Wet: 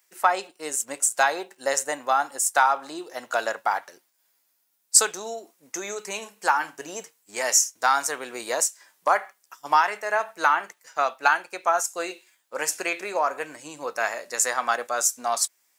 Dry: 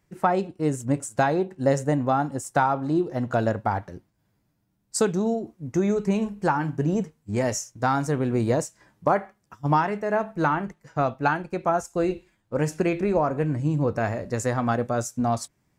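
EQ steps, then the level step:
high-pass filter 460 Hz 12 dB per octave
spectral tilt +4.5 dB per octave
dynamic equaliser 1,200 Hz, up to +4 dB, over −34 dBFS, Q 0.74
0.0 dB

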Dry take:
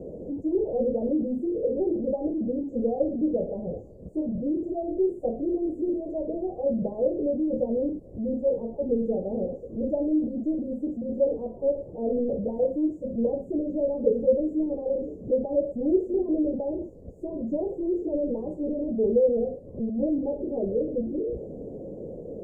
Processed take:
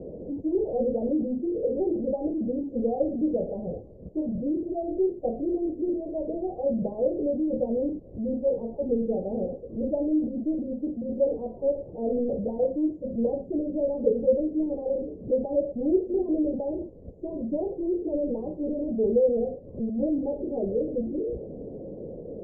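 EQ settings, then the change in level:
dynamic equaliser 750 Hz, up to +4 dB, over −49 dBFS, Q 7.7
high-frequency loss of the air 250 metres
0.0 dB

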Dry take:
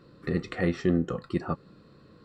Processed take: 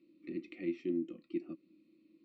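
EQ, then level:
pair of resonant band-passes 870 Hz, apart 2.8 octaves
phaser with its sweep stopped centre 430 Hz, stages 6
+1.5 dB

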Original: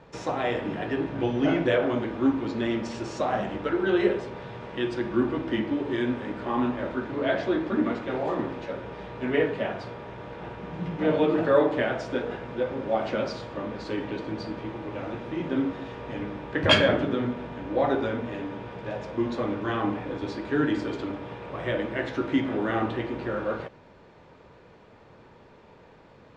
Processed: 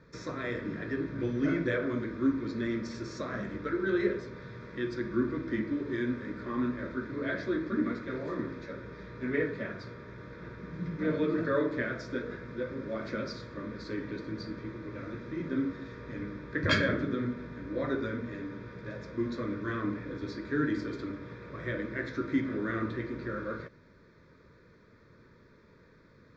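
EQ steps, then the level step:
phaser with its sweep stopped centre 2,900 Hz, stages 6
−3.0 dB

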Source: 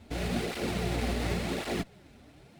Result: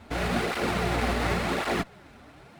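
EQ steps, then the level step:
parametric band 1,200 Hz +10.5 dB 1.6 octaves
+2.0 dB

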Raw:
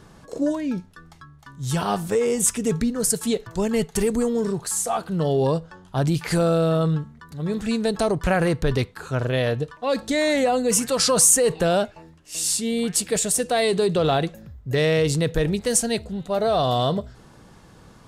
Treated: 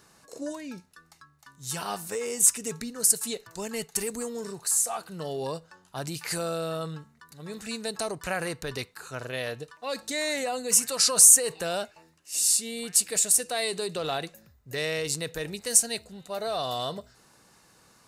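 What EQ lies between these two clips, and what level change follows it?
spectral tilt +3 dB per octave
notch filter 3,300 Hz, Q 8.3
−8.0 dB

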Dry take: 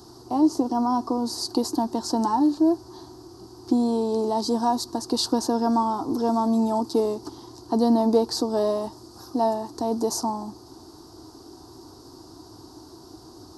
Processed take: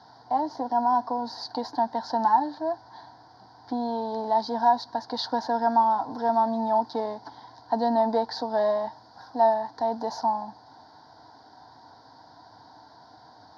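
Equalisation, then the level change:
band-pass filter 140–3,500 Hz
parametric band 1,500 Hz +13 dB 2.5 octaves
phaser with its sweep stopped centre 1,800 Hz, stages 8
−4.0 dB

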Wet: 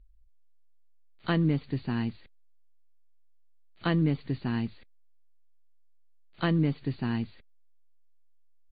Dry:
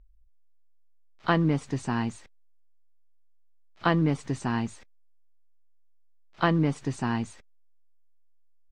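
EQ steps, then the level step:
linear-phase brick-wall low-pass 4,700 Hz
parametric band 950 Hz −10 dB 1.7 octaves
0.0 dB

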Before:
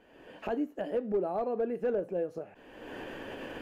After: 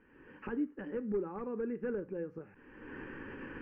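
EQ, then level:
high-frequency loss of the air 340 metres
mains-hum notches 60/120/180 Hz
phaser with its sweep stopped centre 1,600 Hz, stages 4
+1.5 dB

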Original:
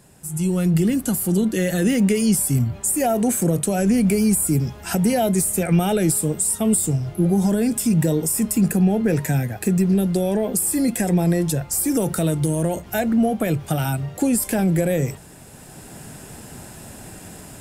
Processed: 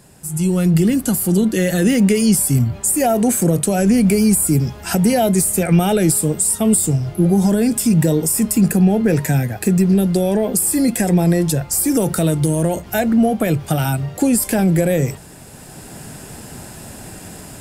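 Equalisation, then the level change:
parametric band 4,700 Hz +3 dB 0.23 octaves
+4.0 dB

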